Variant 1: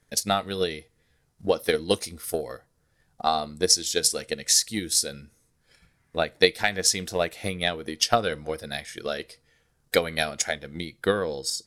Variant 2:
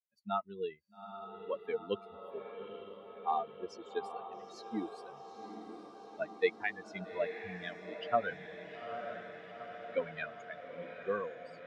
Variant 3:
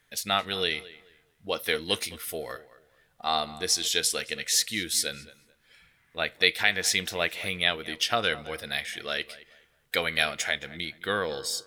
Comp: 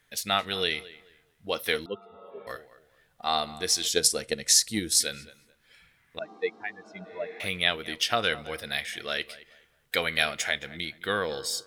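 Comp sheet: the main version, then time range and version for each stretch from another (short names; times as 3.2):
3
1.86–2.47 from 2
3.9–5 from 1
6.19–7.4 from 2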